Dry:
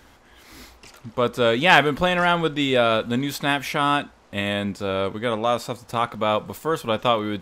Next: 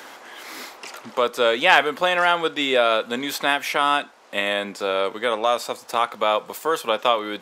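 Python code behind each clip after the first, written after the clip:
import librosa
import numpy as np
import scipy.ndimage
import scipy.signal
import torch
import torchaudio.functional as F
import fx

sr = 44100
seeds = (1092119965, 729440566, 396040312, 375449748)

y = scipy.signal.sosfilt(scipy.signal.butter(2, 440.0, 'highpass', fs=sr, output='sos'), x)
y = fx.band_squash(y, sr, depth_pct=40)
y = y * librosa.db_to_amplitude(2.0)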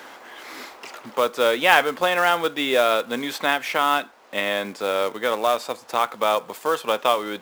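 y = fx.high_shelf(x, sr, hz=5000.0, db=-7.0)
y = fx.quant_float(y, sr, bits=2)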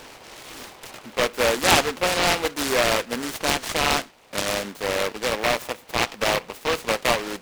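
y = fx.noise_mod_delay(x, sr, seeds[0], noise_hz=1400.0, depth_ms=0.17)
y = y * librosa.db_to_amplitude(-1.5)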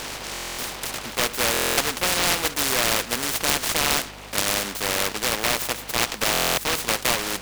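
y = fx.add_hum(x, sr, base_hz=50, snr_db=29)
y = fx.buffer_glitch(y, sr, at_s=(0.33, 1.52, 6.32), block=1024, repeats=10)
y = fx.spectral_comp(y, sr, ratio=2.0)
y = y * librosa.db_to_amplitude(3.0)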